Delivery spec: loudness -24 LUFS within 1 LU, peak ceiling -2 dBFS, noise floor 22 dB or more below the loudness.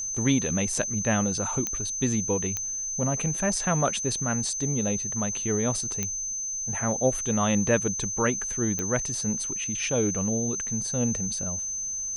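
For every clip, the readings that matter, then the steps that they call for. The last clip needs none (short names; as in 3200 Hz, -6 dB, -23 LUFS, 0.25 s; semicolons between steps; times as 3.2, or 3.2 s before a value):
clicks 4; steady tone 6200 Hz; tone level -29 dBFS; loudness -26.0 LUFS; peak -9.5 dBFS; loudness target -24.0 LUFS
-> de-click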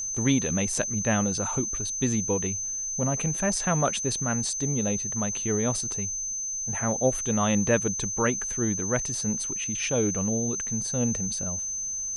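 clicks 0; steady tone 6200 Hz; tone level -29 dBFS
-> notch 6200 Hz, Q 30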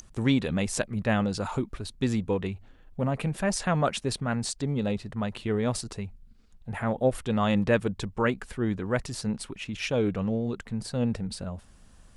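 steady tone none; loudness -29.0 LUFS; peak -10.0 dBFS; loudness target -24.0 LUFS
-> gain +5 dB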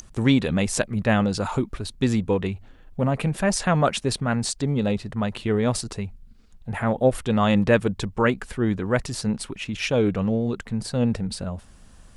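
loudness -24.0 LUFS; peak -5.0 dBFS; noise floor -50 dBFS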